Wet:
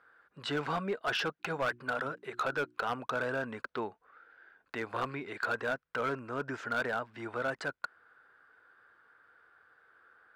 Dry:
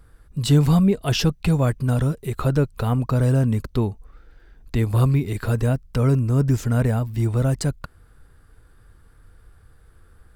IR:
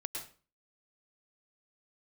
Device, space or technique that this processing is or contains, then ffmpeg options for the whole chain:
megaphone: -filter_complex "[0:a]highpass=590,lowpass=2.6k,equalizer=f=1.5k:t=o:w=0.41:g=10,asoftclip=type=hard:threshold=-23dB,asplit=3[a][b][c];[a]afade=t=out:st=1.39:d=0.02[d];[b]bandreject=f=60:t=h:w=6,bandreject=f=120:t=h:w=6,bandreject=f=180:t=h:w=6,bandreject=f=240:t=h:w=6,bandreject=f=300:t=h:w=6,bandreject=f=360:t=h:w=6,afade=t=in:st=1.39:d=0.02,afade=t=out:st=2.85:d=0.02[e];[c]afade=t=in:st=2.85:d=0.02[f];[d][e][f]amix=inputs=3:normalize=0,volume=-3dB"

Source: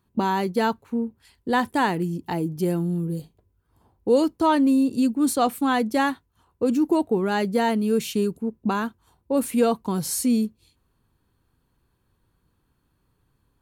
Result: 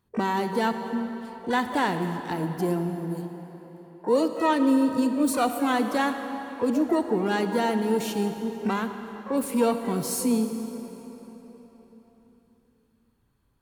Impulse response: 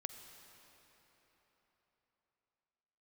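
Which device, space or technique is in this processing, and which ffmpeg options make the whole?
shimmer-style reverb: -filter_complex "[0:a]asplit=3[a][b][c];[a]afade=t=out:st=2.89:d=0.02[d];[b]highpass=190,afade=t=in:st=2.89:d=0.02,afade=t=out:st=4.59:d=0.02[e];[c]afade=t=in:st=4.59:d=0.02[f];[d][e][f]amix=inputs=3:normalize=0,asplit=2[g][h];[h]asetrate=88200,aresample=44100,atempo=0.5,volume=-12dB[i];[g][i]amix=inputs=2:normalize=0[j];[1:a]atrim=start_sample=2205[k];[j][k]afir=irnorm=-1:irlink=0"

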